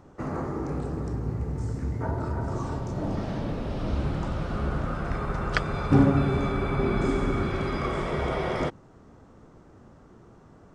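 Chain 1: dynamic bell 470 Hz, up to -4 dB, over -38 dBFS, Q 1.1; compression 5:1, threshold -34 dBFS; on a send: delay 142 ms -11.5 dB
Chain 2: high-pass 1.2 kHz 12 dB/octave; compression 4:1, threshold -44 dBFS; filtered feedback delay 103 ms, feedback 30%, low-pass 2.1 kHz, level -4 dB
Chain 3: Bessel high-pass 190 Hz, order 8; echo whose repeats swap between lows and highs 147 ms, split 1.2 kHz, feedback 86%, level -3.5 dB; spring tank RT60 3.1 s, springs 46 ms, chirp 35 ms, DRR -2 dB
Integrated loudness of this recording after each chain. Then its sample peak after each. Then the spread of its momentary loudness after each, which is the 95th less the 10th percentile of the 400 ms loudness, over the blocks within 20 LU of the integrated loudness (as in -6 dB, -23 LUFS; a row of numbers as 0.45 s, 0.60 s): -38.0 LUFS, -45.0 LUFS, -24.5 LUFS; -17.0 dBFS, -22.0 dBFS, -5.5 dBFS; 16 LU, 20 LU, 13 LU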